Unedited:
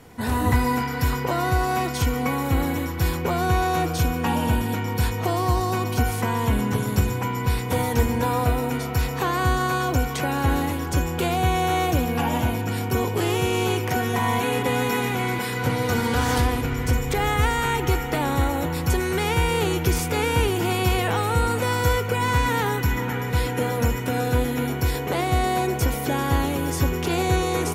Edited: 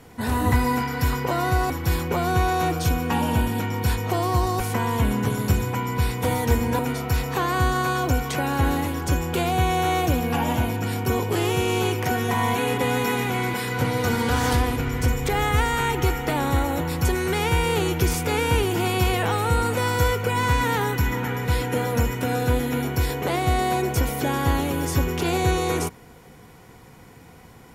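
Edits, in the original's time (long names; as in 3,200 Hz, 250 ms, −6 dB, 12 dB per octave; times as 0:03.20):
0:01.70–0:02.84: remove
0:05.74–0:06.08: remove
0:08.27–0:08.64: remove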